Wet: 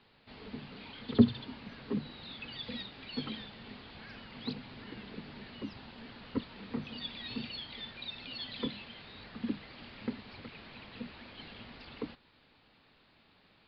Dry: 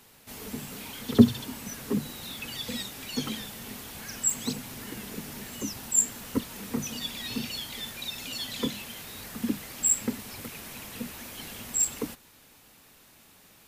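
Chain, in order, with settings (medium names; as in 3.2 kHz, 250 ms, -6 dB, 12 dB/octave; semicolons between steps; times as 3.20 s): steep low-pass 4.7 kHz 96 dB/octave; trim -6 dB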